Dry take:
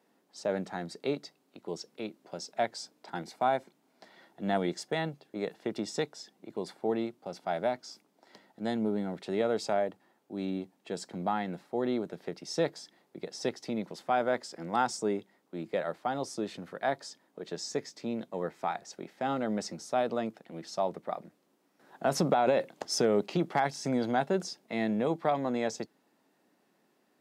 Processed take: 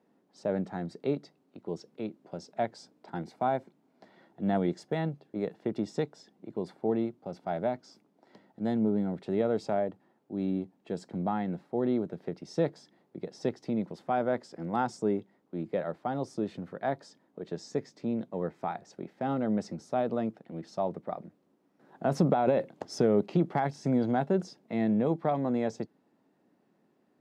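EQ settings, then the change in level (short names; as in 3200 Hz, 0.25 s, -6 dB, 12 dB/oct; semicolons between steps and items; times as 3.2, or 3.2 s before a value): tilt -3 dB/oct; -2.5 dB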